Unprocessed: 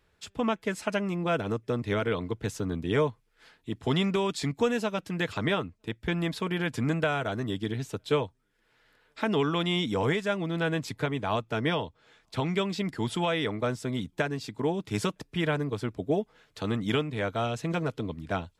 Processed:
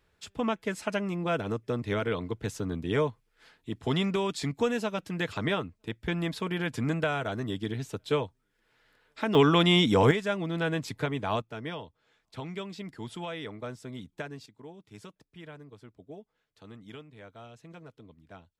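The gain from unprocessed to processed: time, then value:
-1.5 dB
from 9.35 s +6 dB
from 10.11 s -1 dB
from 11.42 s -9.5 dB
from 14.46 s -18.5 dB

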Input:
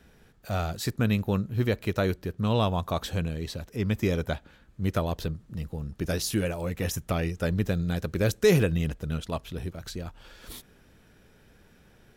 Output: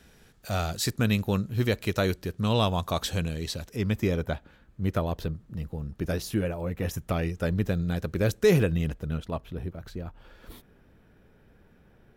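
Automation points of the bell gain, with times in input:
bell 7300 Hz 2.6 oct
3.65 s +6.5 dB
4.17 s -5.5 dB
6.03 s -5.5 dB
6.63 s -13.5 dB
7.09 s -3.5 dB
8.91 s -3.5 dB
9.44 s -13.5 dB

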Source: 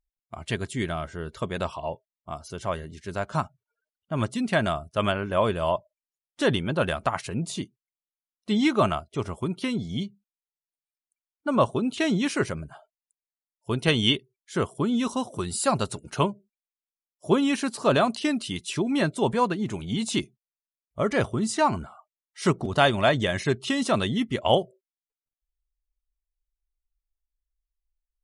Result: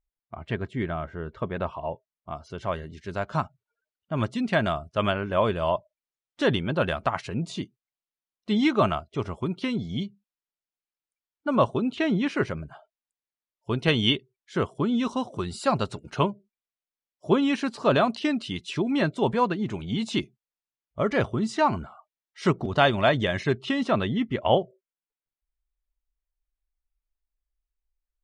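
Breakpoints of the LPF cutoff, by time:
1.78 s 2000 Hz
2.87 s 4800 Hz
11.81 s 4800 Hz
12.1 s 2500 Hz
12.67 s 4400 Hz
23.36 s 4400 Hz
24.01 s 2700 Hz

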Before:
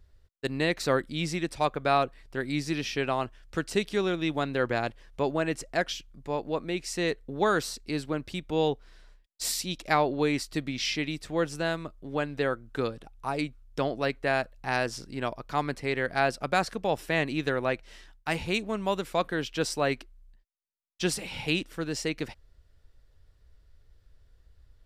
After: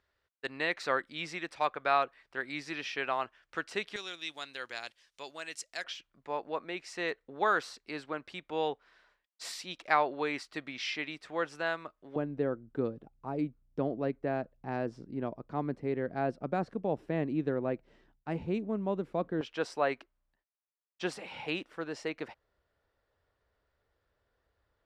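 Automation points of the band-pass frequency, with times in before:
band-pass, Q 0.78
1500 Hz
from 3.96 s 5600 Hz
from 5.84 s 1300 Hz
from 12.16 s 250 Hz
from 19.41 s 910 Hz

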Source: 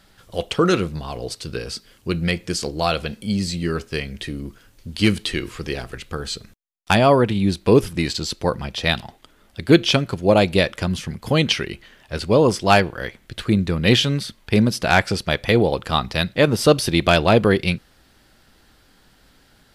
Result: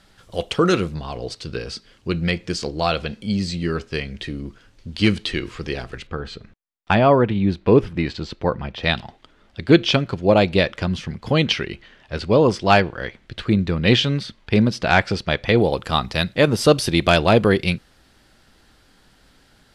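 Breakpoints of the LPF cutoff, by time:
9900 Hz
from 0.94 s 5800 Hz
from 6.07 s 2600 Hz
from 8.83 s 4900 Hz
from 15.58 s 11000 Hz

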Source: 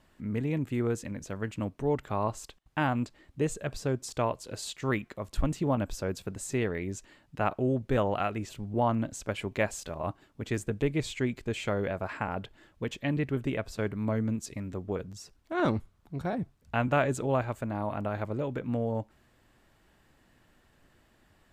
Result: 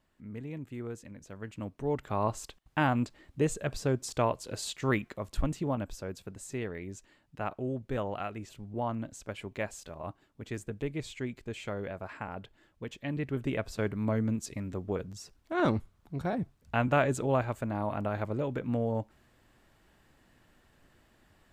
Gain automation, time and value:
1.19 s -10 dB
2.31 s +1 dB
5.04 s +1 dB
6.06 s -6.5 dB
12.98 s -6.5 dB
13.59 s 0 dB

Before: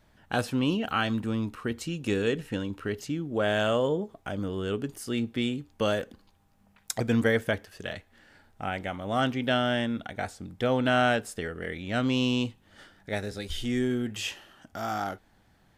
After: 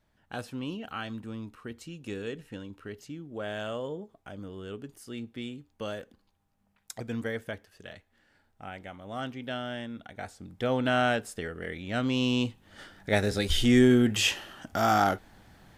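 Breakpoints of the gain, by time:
9.89 s -9.5 dB
10.71 s -2 dB
12.11 s -2 dB
13.36 s +8 dB

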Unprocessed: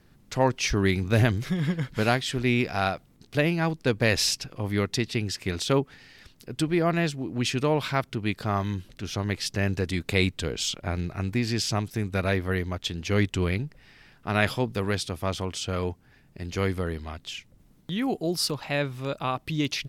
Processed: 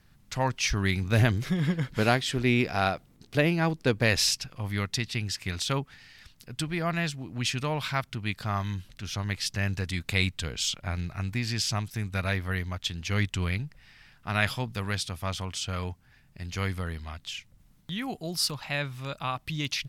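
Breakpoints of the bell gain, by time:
bell 380 Hz 1.6 oct
0.8 s -10.5 dB
1.45 s -0.5 dB
3.86 s -0.5 dB
4.54 s -11.5 dB

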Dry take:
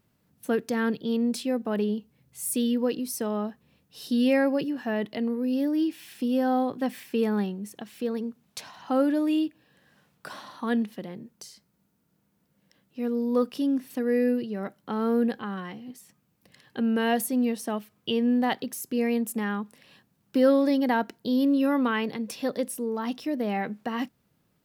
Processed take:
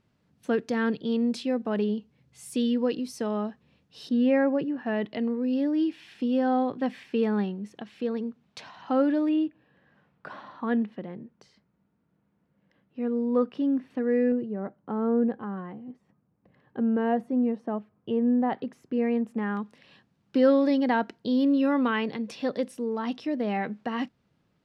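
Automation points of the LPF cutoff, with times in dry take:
5200 Hz
from 4.09 s 1900 Hz
from 4.86 s 3800 Hz
from 9.29 s 2100 Hz
from 14.32 s 1100 Hz
from 18.53 s 1800 Hz
from 19.57 s 4700 Hz

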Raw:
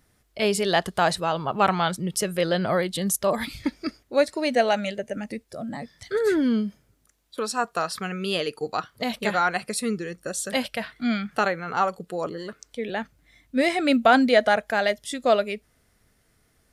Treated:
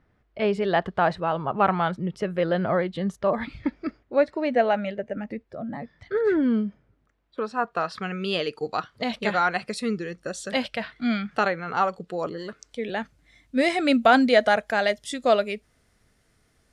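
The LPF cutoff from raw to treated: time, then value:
7.57 s 2000 Hz
8.19 s 5200 Hz
12.09 s 5200 Hz
12.94 s 9300 Hz

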